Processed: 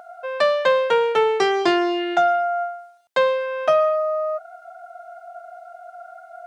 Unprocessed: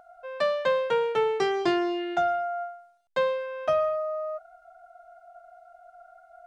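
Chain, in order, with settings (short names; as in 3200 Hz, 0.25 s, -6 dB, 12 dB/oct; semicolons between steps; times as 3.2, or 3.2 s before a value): HPF 360 Hz 6 dB/oct; in parallel at -2 dB: compressor, threshold -39 dBFS, peak gain reduction 16.5 dB; on the sum: gain +7 dB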